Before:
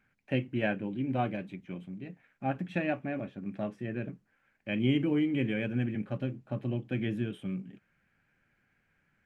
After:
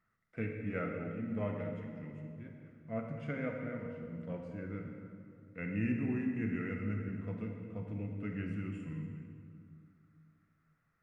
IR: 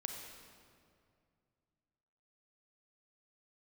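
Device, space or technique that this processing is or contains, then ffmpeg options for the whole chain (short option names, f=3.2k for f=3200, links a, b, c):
slowed and reverbed: -filter_complex "[0:a]asetrate=37044,aresample=44100[a];[1:a]atrim=start_sample=2205[b];[a][b]afir=irnorm=-1:irlink=0,volume=-5.5dB"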